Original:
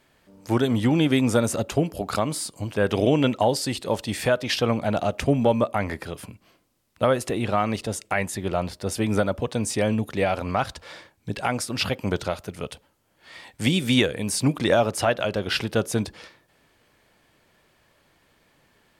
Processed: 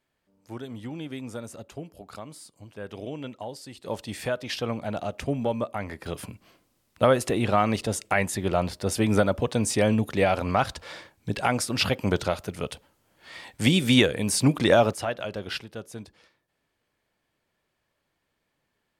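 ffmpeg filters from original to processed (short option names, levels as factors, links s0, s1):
-af "asetnsamples=n=441:p=0,asendcmd='3.84 volume volume -7dB;6.06 volume volume 1dB;14.93 volume volume -7.5dB;15.58 volume volume -15dB',volume=0.158"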